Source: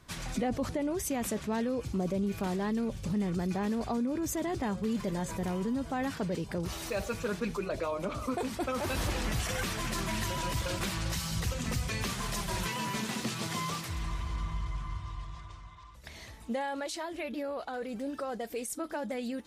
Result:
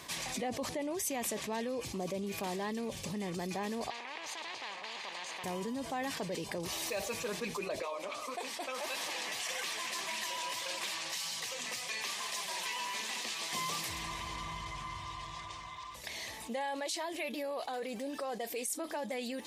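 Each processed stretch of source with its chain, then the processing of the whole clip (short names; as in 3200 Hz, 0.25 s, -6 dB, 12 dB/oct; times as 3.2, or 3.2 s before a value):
3.9–5.44 minimum comb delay 0.45 ms + ladder band-pass 1000 Hz, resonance 75% + spectral compressor 4:1
7.82–13.53 weighting filter A + flange 1.7 Hz, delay 3.5 ms, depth 9 ms, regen +67%
17.12–17.8 HPF 58 Hz + high shelf 7200 Hz +6 dB
whole clip: HPF 740 Hz 6 dB/oct; bell 1400 Hz -15 dB 0.24 oct; fast leveller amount 50%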